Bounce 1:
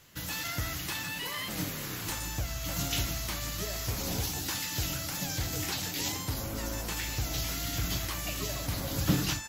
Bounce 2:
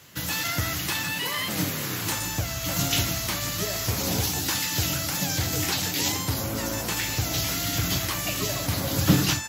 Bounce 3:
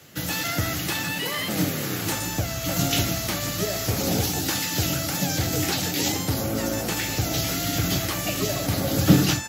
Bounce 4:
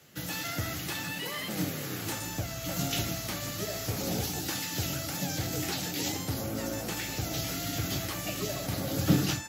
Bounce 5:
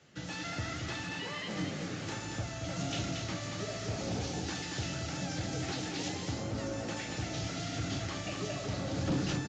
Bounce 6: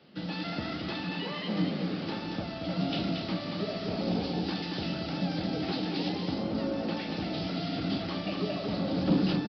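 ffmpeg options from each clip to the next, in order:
-af "highpass=f=76:w=0.5412,highpass=f=76:w=1.3066,volume=7.5dB"
-filter_complex "[0:a]bandreject=f=1k:w=5.6,acrossover=split=140|980[a][b][c];[b]acontrast=33[d];[a][d][c]amix=inputs=3:normalize=0"
-af "flanger=delay=4.6:depth=4.2:regen=-80:speed=0.7:shape=triangular,volume=-3.5dB"
-af "highshelf=f=4.7k:g=-6.5,aresample=16000,asoftclip=type=tanh:threshold=-24dB,aresample=44100,aecho=1:1:229:0.562,volume=-2.5dB"
-af "equalizer=f=1.8k:w=1.4:g=-6.5,aresample=11025,aresample=44100,lowshelf=f=150:t=q:w=3:g=-6.5,volume=5dB"

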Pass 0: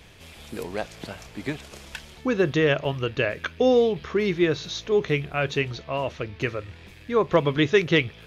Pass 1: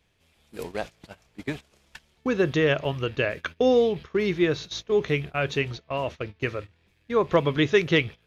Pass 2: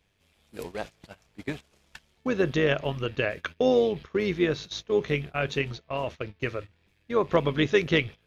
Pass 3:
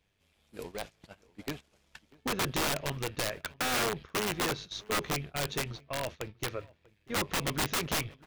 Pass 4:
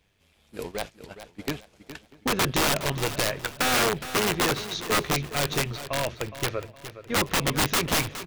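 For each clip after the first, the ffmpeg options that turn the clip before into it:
-af "agate=range=-18dB:threshold=-33dB:ratio=16:detection=peak,volume=-1dB"
-af "tremolo=f=100:d=0.462"
-filter_complex "[0:a]aeval=exprs='(mod(10*val(0)+1,2)-1)/10':c=same,asplit=2[a][b];[b]adelay=641.4,volume=-23dB,highshelf=f=4k:g=-14.4[c];[a][c]amix=inputs=2:normalize=0,aeval=exprs='0.112*(cos(1*acos(clip(val(0)/0.112,-1,1)))-cos(1*PI/2))+0.00282*(cos(6*acos(clip(val(0)/0.112,-1,1)))-cos(6*PI/2))':c=same,volume=-4.5dB"
-af "aecho=1:1:415|830|1245:0.237|0.0783|0.0258,volume=7dB"

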